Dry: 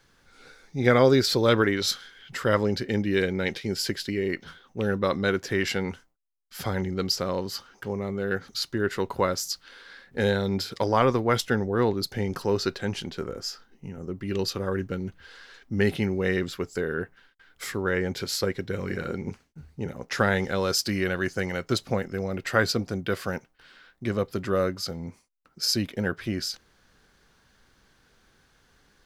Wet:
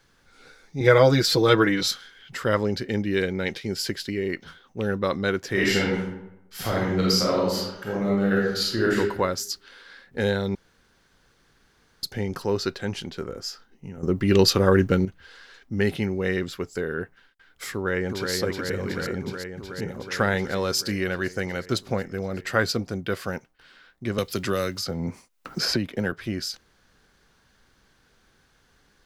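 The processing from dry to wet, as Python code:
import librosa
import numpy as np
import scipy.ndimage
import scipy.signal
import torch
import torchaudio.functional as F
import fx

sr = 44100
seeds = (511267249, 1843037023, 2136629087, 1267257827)

y = fx.comb(x, sr, ms=6.2, depth=0.96, at=(0.8, 1.88))
y = fx.reverb_throw(y, sr, start_s=5.51, length_s=3.45, rt60_s=0.88, drr_db=-5.0)
y = fx.echo_throw(y, sr, start_s=17.72, length_s=0.6, ms=370, feedback_pct=80, wet_db=-4.0)
y = fx.band_squash(y, sr, depth_pct=100, at=(24.18, 26.12))
y = fx.edit(y, sr, fx.room_tone_fill(start_s=10.55, length_s=1.48),
    fx.clip_gain(start_s=14.03, length_s=1.02, db=10.5), tone=tone)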